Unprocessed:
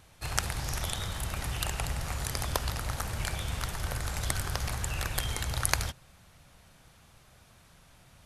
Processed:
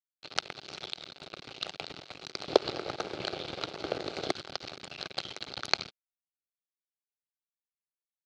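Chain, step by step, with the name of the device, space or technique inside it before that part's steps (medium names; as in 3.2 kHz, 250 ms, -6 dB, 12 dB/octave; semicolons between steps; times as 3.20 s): 2.48–4.31 s: peaking EQ 380 Hz +13.5 dB 2 oct; blown loudspeaker (crossover distortion -30.5 dBFS; cabinet simulation 220–4700 Hz, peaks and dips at 230 Hz -8 dB, 380 Hz +4 dB, 1 kHz -10 dB, 1.8 kHz -9 dB, 4.2 kHz +7 dB); trim +4 dB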